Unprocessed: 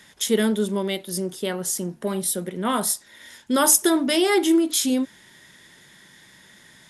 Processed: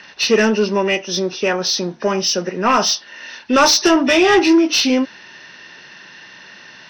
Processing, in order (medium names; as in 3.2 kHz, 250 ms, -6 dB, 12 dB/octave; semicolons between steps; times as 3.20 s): knee-point frequency compression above 1.7 kHz 1.5:1; overdrive pedal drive 18 dB, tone 3.2 kHz, clips at -3.5 dBFS; trim +2 dB